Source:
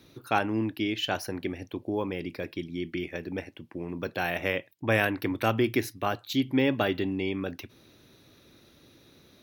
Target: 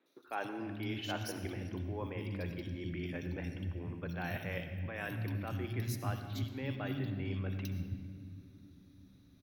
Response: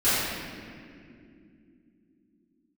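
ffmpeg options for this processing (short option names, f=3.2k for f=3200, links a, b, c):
-filter_complex "[0:a]agate=range=-12dB:threshold=-49dB:ratio=16:detection=peak,asubboost=boost=6:cutoff=150,areverse,acompressor=threshold=-33dB:ratio=5,areverse,acrossover=split=260|2900[a][b][c];[c]adelay=60[d];[a]adelay=280[e];[e][b][d]amix=inputs=3:normalize=0,asplit=2[f][g];[1:a]atrim=start_sample=2205,adelay=65[h];[g][h]afir=irnorm=-1:irlink=0,volume=-24.5dB[i];[f][i]amix=inputs=2:normalize=0,volume=-1.5dB"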